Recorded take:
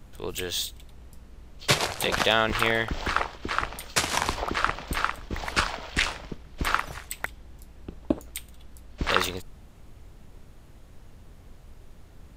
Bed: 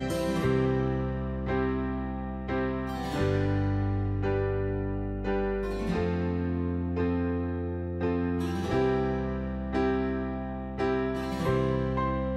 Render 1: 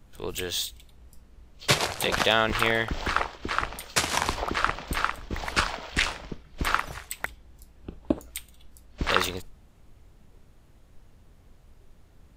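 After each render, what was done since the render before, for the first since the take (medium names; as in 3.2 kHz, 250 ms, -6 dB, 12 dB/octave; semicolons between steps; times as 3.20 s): noise print and reduce 6 dB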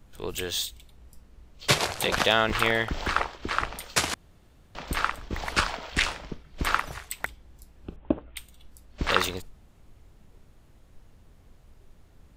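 4.14–4.75 s: room tone; 7.96–8.37 s: steep low-pass 3.3 kHz 48 dB/octave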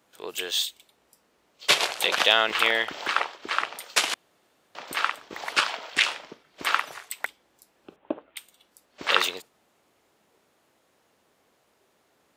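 dynamic bell 3 kHz, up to +6 dB, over -39 dBFS, Q 1.4; high-pass 410 Hz 12 dB/octave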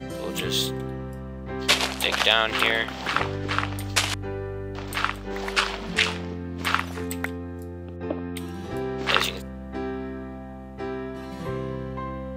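add bed -4 dB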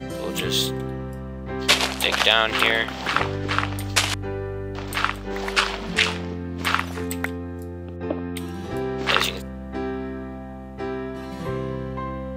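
trim +2.5 dB; peak limiter -2 dBFS, peak gain reduction 2.5 dB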